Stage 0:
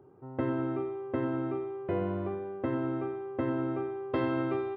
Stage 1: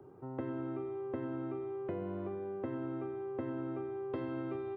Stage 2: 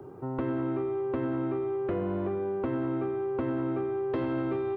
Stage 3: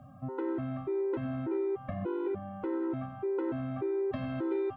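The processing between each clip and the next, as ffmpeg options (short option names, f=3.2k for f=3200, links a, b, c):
-filter_complex "[0:a]acrossover=split=180|520[a][b][c];[a]acompressor=threshold=-52dB:ratio=4[d];[b]acompressor=threshold=-42dB:ratio=4[e];[c]acompressor=threshold=-52dB:ratio=4[f];[d][e][f]amix=inputs=3:normalize=0,volume=2dB"
-af "aeval=exprs='0.0631*sin(PI/2*2*val(0)/0.0631)':c=same"
-af "afftfilt=real='re*gt(sin(2*PI*1.7*pts/sr)*(1-2*mod(floor(b*sr/1024/260),2)),0)':imag='im*gt(sin(2*PI*1.7*pts/sr)*(1-2*mod(floor(b*sr/1024/260),2)),0)':win_size=1024:overlap=0.75"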